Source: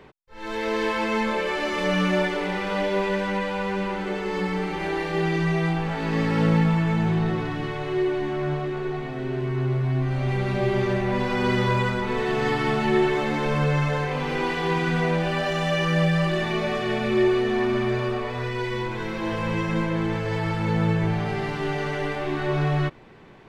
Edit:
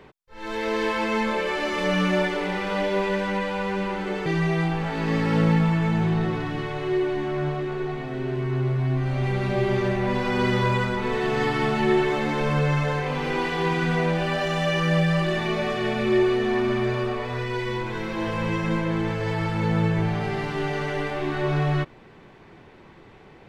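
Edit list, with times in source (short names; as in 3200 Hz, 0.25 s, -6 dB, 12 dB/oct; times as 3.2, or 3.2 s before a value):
4.26–5.31 cut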